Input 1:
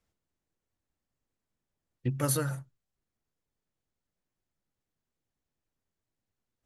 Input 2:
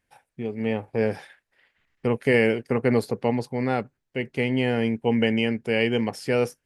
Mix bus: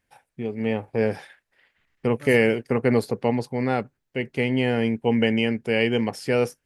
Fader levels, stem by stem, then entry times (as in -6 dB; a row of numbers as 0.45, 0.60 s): -13.0, +1.0 dB; 0.00, 0.00 s